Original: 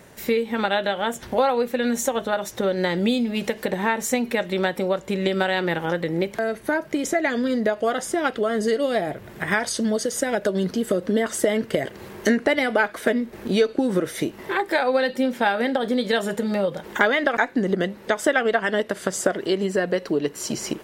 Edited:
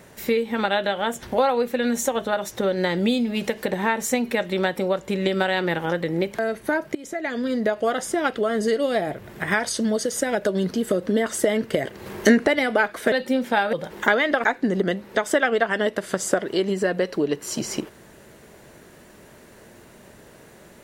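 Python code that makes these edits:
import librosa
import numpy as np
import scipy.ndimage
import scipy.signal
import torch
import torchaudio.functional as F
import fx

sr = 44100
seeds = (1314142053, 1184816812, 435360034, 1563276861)

y = fx.edit(x, sr, fx.fade_in_from(start_s=6.95, length_s=0.94, curve='qsin', floor_db=-19.0),
    fx.clip_gain(start_s=12.06, length_s=0.41, db=4.0),
    fx.cut(start_s=13.12, length_s=1.89),
    fx.cut(start_s=15.62, length_s=1.04), tone=tone)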